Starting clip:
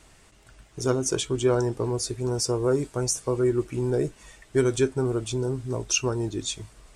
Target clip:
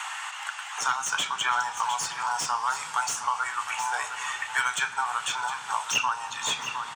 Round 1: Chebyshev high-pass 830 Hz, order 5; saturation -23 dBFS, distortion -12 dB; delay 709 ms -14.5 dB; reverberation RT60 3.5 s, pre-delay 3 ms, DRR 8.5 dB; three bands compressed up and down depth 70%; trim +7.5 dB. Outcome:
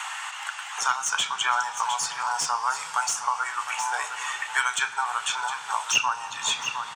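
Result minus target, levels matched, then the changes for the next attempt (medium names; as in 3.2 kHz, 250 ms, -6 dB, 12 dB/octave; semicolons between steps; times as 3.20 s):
saturation: distortion -5 dB
change: saturation -30 dBFS, distortion -6 dB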